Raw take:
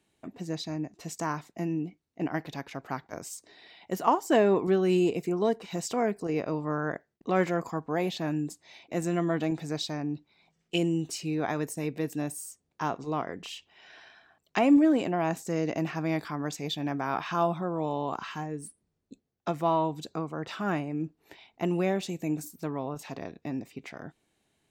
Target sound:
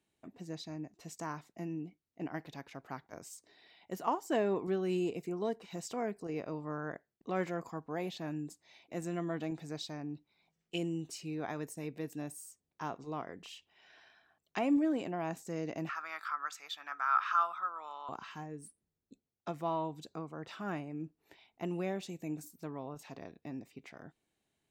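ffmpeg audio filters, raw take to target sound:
ffmpeg -i in.wav -filter_complex "[0:a]asettb=1/sr,asplit=3[link_01][link_02][link_03];[link_01]atrim=end=15.894[link_04];[link_02]atrim=start=15.89:end=18.09,asetpts=PTS-STARTPTS,afade=type=in:duration=0.004:curve=qsin,afade=type=out:start_time=2.196:duration=0.004:curve=qsin,highpass=frequency=1300:width_type=q:width=9.4[link_05];[link_03]atrim=start=18.086[link_06];[link_04][link_05]acrossfade=duration=0.004:curve1=hsin:curve2=qsin[link_07];[link_07][link_06]acrossfade=duration=0.004:curve1=qsin:curve2=hsin,volume=-9dB" out.wav

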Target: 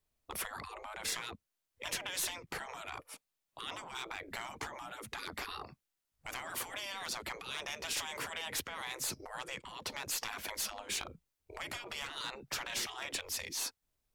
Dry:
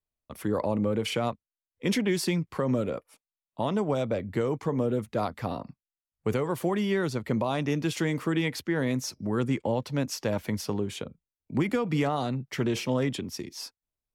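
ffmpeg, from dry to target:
ffmpeg -i in.wav -af "acompressor=threshold=-29dB:ratio=6,afftfilt=real='re*lt(hypot(re,im),0.0224)':imag='im*lt(hypot(re,im),0.0224)':win_size=1024:overlap=0.75,aeval=exprs='clip(val(0),-1,0.01)':channel_layout=same,volume=8dB" out.wav

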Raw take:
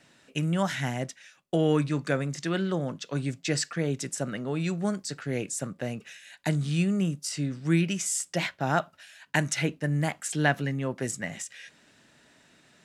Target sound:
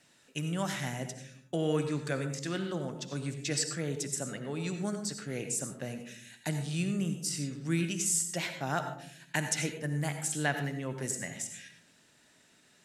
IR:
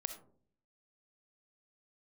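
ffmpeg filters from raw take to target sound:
-filter_complex "[0:a]aemphasis=mode=production:type=cd[link_01];[1:a]atrim=start_sample=2205,asetrate=29988,aresample=44100[link_02];[link_01][link_02]afir=irnorm=-1:irlink=0,volume=-7dB"

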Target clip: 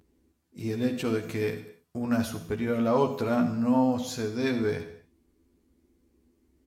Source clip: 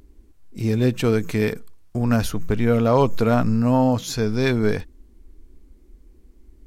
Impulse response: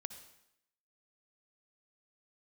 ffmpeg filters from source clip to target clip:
-filter_complex "[0:a]highpass=96,asplit=2[link_01][link_02];[link_02]adelay=12,volume=-4dB[link_03];[link_01][link_03]amix=inputs=2:normalize=0[link_04];[1:a]atrim=start_sample=2205,afade=type=out:start_time=0.39:duration=0.01,atrim=end_sample=17640,asetrate=52920,aresample=44100[link_05];[link_04][link_05]afir=irnorm=-1:irlink=0,volume=-4dB"

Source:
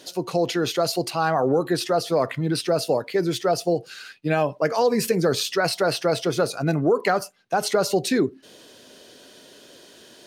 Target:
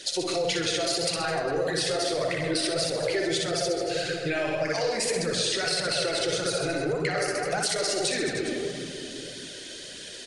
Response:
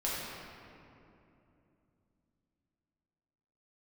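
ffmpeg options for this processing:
-filter_complex "[0:a]aecho=1:1:60|129|208.4|299.6|404.5:0.631|0.398|0.251|0.158|0.1,alimiter=limit=-15dB:level=0:latency=1:release=19,equalizer=frequency=125:width_type=o:width=1:gain=-9,equalizer=frequency=250:width_type=o:width=1:gain=-10,equalizer=frequency=1000:width_type=o:width=1:gain=-12,equalizer=frequency=2000:width_type=o:width=1:gain=7,equalizer=frequency=4000:width_type=o:width=1:gain=5,equalizer=frequency=8000:width_type=o:width=1:gain=7,asplit=2[link_01][link_02];[1:a]atrim=start_sample=2205,lowpass=2200,lowshelf=frequency=130:gain=10.5[link_03];[link_02][link_03]afir=irnorm=-1:irlink=0,volume=-7.5dB[link_04];[link_01][link_04]amix=inputs=2:normalize=0,acompressor=threshold=-25dB:ratio=6,flanger=delay=0.5:depth=2.9:regen=-32:speed=1.7:shape=triangular,volume=5.5dB" -ar 24000 -c:a libmp3lame -b:a 64k

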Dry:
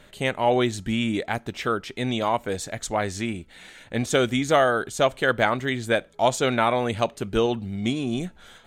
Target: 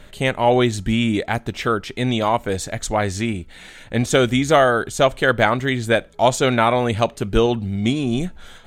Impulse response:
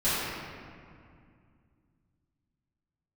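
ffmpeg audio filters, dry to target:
-af "lowshelf=frequency=79:gain=10.5,volume=4.5dB"

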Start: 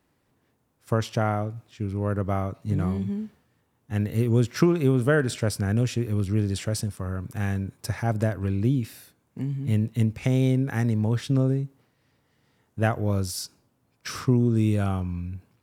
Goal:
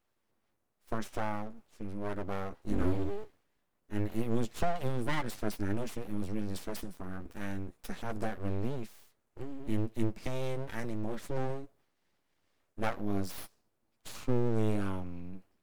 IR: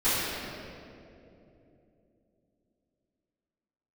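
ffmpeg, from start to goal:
-filter_complex "[0:a]asettb=1/sr,asplit=3[link_01][link_02][link_03];[link_01]atrim=end=2.674[link_04];[link_02]atrim=start=2.67:end=3.24,asetpts=PTS-STARTPTS,afade=type=in:duration=0.004:curve=qsin,afade=type=out:start_time=0.566:duration=0.004:curve=qsin,acontrast=35[link_05];[link_03]atrim=start=3.236[link_06];[link_04][link_05]acrossfade=duration=0.004:curve1=hsin:curve2=qsin[link_07];[link_07][link_06]acrossfade=duration=0.004:curve1=qsin:curve2=hsin,flanger=delay=8.5:depth=3.6:regen=26:speed=0.21:shape=triangular,aeval=exprs='abs(val(0))':channel_layout=same,volume=-4.5dB"

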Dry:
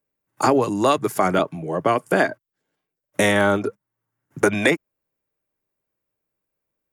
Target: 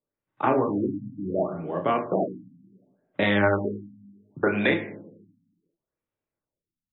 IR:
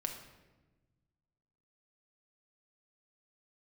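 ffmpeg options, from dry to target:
-filter_complex "[0:a]asplit=2[link_01][link_02];[1:a]atrim=start_sample=2205,asetrate=70560,aresample=44100,adelay=30[link_03];[link_02][link_03]afir=irnorm=-1:irlink=0,volume=0.5dB[link_04];[link_01][link_04]amix=inputs=2:normalize=0,afftfilt=real='re*lt(b*sr/1024,270*pow(4100/270,0.5+0.5*sin(2*PI*0.69*pts/sr)))':imag='im*lt(b*sr/1024,270*pow(4100/270,0.5+0.5*sin(2*PI*0.69*pts/sr)))':win_size=1024:overlap=0.75,volume=-6dB"

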